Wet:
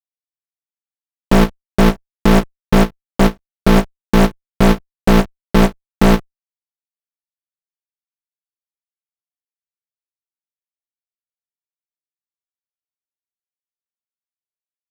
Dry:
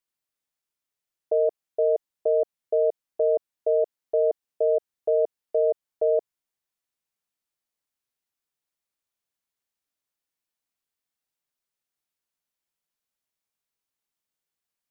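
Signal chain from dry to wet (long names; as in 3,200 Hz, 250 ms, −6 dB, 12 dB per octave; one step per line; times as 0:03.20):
frequency shifter −430 Hz
leveller curve on the samples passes 2
fuzz pedal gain 49 dB, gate −54 dBFS
every ending faded ahead of time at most 430 dB per second
level +5.5 dB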